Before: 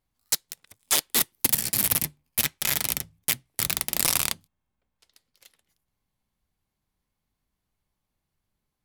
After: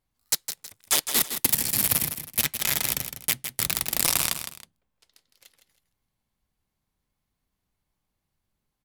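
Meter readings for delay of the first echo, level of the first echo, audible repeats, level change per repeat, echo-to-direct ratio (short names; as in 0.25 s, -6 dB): 0.16 s, -9.0 dB, 2, -10.0 dB, -8.5 dB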